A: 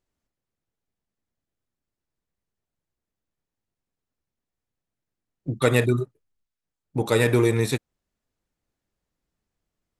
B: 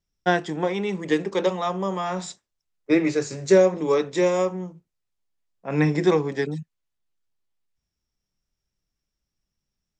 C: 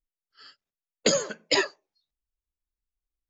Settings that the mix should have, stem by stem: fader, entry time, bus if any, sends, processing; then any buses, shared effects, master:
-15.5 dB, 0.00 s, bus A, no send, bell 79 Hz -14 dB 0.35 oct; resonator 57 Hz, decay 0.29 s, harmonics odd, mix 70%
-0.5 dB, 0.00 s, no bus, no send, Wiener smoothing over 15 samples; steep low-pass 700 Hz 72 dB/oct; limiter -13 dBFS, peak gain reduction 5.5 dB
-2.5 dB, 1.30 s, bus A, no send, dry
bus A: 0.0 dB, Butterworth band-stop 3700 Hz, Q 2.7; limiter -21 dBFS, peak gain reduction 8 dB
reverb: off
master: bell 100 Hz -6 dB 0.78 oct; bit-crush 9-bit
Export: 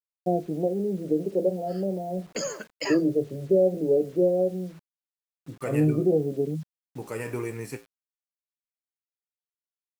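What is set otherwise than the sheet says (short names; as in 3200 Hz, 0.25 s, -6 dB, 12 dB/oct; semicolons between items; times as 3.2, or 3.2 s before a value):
stem A -15.5 dB -> -4.0 dB; master: missing bell 100 Hz -6 dB 0.78 oct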